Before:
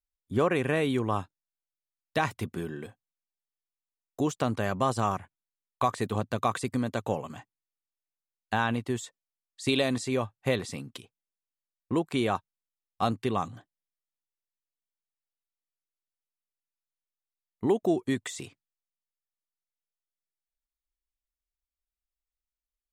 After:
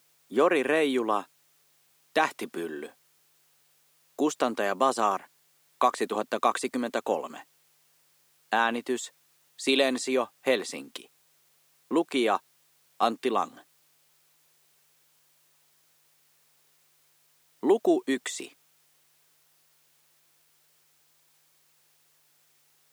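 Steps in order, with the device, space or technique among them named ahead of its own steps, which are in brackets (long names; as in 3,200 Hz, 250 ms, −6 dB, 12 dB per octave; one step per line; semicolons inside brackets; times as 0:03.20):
video cassette with head-switching buzz (hum with harmonics 50 Hz, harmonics 3, −63 dBFS −1 dB per octave; white noise bed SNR 36 dB)
high-pass filter 270 Hz 24 dB per octave
level +3.5 dB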